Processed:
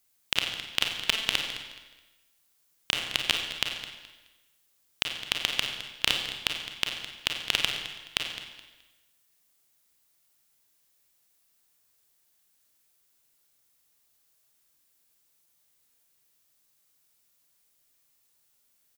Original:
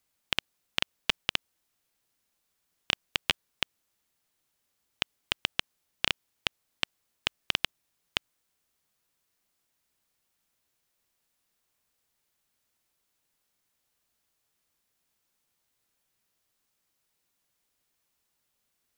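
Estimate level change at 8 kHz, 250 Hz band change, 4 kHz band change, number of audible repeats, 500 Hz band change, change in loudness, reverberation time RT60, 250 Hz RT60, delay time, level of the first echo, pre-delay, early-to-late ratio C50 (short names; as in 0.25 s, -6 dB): +7.5 dB, +1.5 dB, +4.5 dB, 2, +2.0 dB, +3.5 dB, 1.2 s, 1.2 s, 0.212 s, -14.0 dB, 30 ms, 3.5 dB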